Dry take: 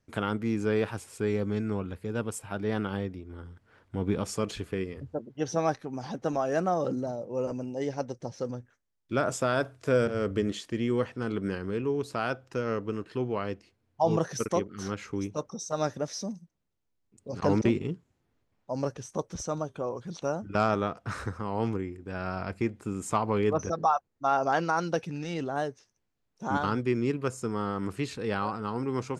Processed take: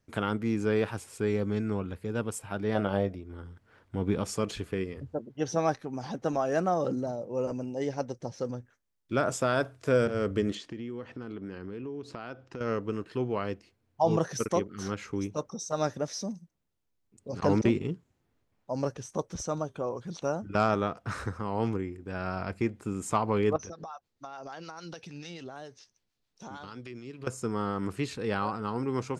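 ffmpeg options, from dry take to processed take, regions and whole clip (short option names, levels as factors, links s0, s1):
-filter_complex "[0:a]asettb=1/sr,asplit=3[s0][s1][s2];[s0]atrim=end=2.754[s3];[s1]atrim=start=2.75:end=3.16,asetpts=PTS-STARTPTS,afade=t=in:d=0.004:c=qsin,afade=t=out:st=0.406:d=0.004:c=qsin,equalizer=f=620:t=o:w=0.47:g=15,asplit=2[s4][s5];[s5]adelay=20,volume=0.251[s6];[s4][s6]amix=inputs=2:normalize=0,atrim=end_sample=18081[s7];[s2]atrim=start=3.156[s8];[s3][s7]acrossfade=d=0.004:c1=hsin:c2=qsin[s9];[s9][s8]acrossfade=d=0.004:c1=qsin:c2=hsin,asettb=1/sr,asplit=3[s10][s11][s12];[s10]atrim=end=10.554[s13];[s11]atrim=start=10.55:end=12.61,asetpts=PTS-STARTPTS,afade=t=in:d=0.004:c=qsin,afade=t=out:st=2.056:d=0.004:c=qsin,lowpass=5400,equalizer=f=290:w=1.8:g=4.5,acompressor=threshold=0.0158:ratio=5:attack=3.2:release=140:knee=1:detection=peak[s14];[s12]atrim=start=12.606[s15];[s13][s14]acrossfade=d=0.004:c1=hsin:c2=qsin[s16];[s16][s15]acrossfade=d=0.004:c1=qsin:c2=hsin,asettb=1/sr,asplit=3[s17][s18][s19];[s17]atrim=end=23.564[s20];[s18]atrim=start=23.56:end=27.27,asetpts=PTS-STARTPTS,afade=t=in:d=0.004:c=qsin,afade=t=out:st=3.706:d=0.004:c=qsin,equalizer=f=4200:t=o:w=1.6:g=10.5,acompressor=threshold=0.0158:ratio=10:attack=3.2:release=140:knee=1:detection=peak,acrossover=split=710[s21][s22];[s21]aeval=exprs='val(0)*(1-0.5/2+0.5/2*cos(2*PI*6.8*n/s))':c=same[s23];[s22]aeval=exprs='val(0)*(1-0.5/2-0.5/2*cos(2*PI*6.8*n/s))':c=same[s24];[s23][s24]amix=inputs=2:normalize=0[s25];[s19]atrim=start=27.266[s26];[s20][s25]acrossfade=d=0.004:c1=hsin:c2=qsin[s27];[s27][s26]acrossfade=d=0.004:c1=qsin:c2=hsin"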